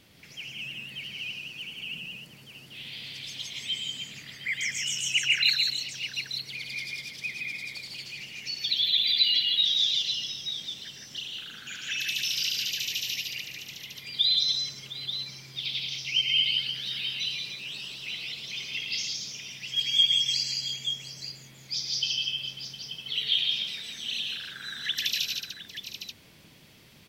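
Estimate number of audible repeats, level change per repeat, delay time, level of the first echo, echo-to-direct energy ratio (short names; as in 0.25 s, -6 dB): 5, no steady repeat, 0.11 s, -7.0 dB, 0.0 dB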